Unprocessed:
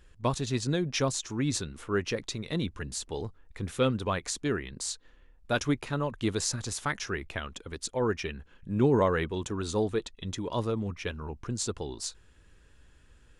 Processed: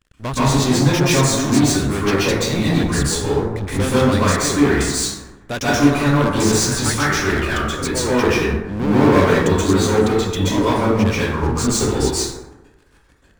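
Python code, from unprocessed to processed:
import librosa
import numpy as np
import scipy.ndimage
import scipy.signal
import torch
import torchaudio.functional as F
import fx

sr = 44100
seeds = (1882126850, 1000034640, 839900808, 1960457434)

y = fx.leveller(x, sr, passes=5)
y = fx.rev_plate(y, sr, seeds[0], rt60_s=1.1, hf_ratio=0.4, predelay_ms=115, drr_db=-9.5)
y = y * librosa.db_to_amplitude(-8.0)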